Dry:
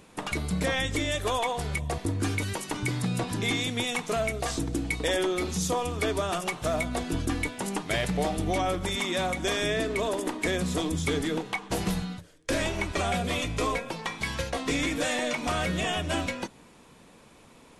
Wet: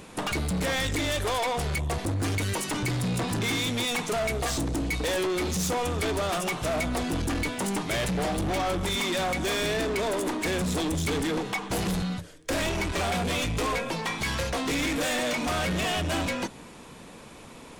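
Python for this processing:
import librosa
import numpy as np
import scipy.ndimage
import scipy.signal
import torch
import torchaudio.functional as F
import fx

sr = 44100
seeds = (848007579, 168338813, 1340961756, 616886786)

y = 10.0 ** (-33.0 / 20.0) * np.tanh(x / 10.0 ** (-33.0 / 20.0))
y = y * 10.0 ** (8.0 / 20.0)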